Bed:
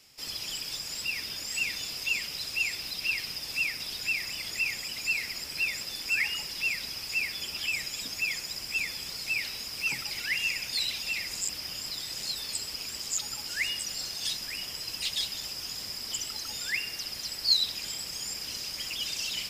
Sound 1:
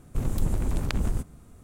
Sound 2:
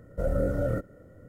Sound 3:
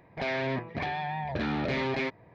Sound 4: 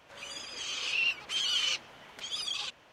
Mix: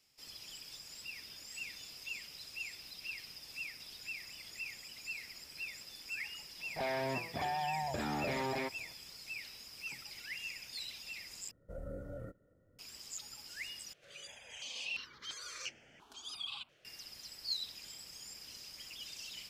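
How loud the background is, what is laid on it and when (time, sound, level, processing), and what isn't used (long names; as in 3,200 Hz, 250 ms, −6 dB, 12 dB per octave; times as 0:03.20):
bed −14 dB
0:06.59: mix in 3 −9 dB + parametric band 800 Hz +7.5 dB 1 octave
0:11.51: overwrite with 2 −18 dB
0:13.93: overwrite with 4 −6.5 dB + step-sequenced phaser 2.9 Hz 250–3,900 Hz
not used: 1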